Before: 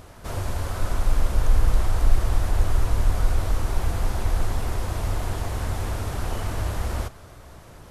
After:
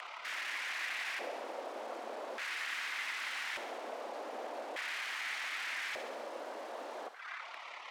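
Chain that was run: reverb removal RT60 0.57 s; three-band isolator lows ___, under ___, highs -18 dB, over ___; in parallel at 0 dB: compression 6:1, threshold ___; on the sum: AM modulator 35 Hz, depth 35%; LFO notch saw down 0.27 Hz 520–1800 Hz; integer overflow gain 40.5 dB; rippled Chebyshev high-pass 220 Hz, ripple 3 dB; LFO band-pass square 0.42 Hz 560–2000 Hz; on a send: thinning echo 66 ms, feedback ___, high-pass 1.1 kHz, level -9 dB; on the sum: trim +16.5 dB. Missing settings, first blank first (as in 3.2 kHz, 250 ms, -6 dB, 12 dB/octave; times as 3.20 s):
-21 dB, 560 Hz, 6.2 kHz, -47 dBFS, 72%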